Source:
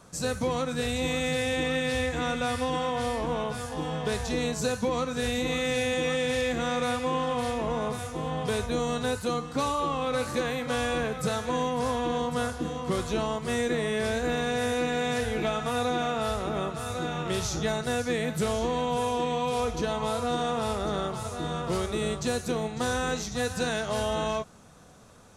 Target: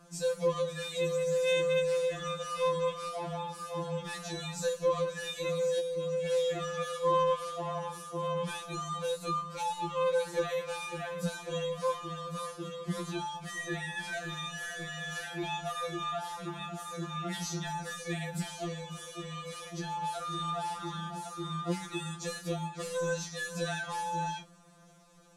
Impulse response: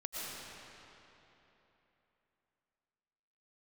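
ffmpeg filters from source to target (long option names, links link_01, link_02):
-filter_complex "[0:a]asettb=1/sr,asplit=3[link_01][link_02][link_03];[link_01]atrim=end=5.794[link_04];[link_02]atrim=start=5.79:end=6.26,asetpts=PTS-STARTPTS,afade=type=in:duration=0.004:curve=qsin,afade=type=out:start_time=0.466:duration=0.004:curve=qsin,acrossover=split=380[link_05][link_06];[link_06]acompressor=threshold=-35dB:ratio=3[link_07];[link_05][link_07]amix=inputs=2:normalize=0[link_08];[link_03]atrim=start=6.256[link_09];[link_04][link_08]acrossfade=duration=0.004:curve1=hsin:curve2=qsin[link_10];[link_10][link_09]acrossfade=duration=0.004:curve1=qsin:curve2=hsin,afftfilt=real='re*2.83*eq(mod(b,8),0)':imag='im*2.83*eq(mod(b,8),0)':win_size=2048:overlap=0.75,volume=-3.5dB"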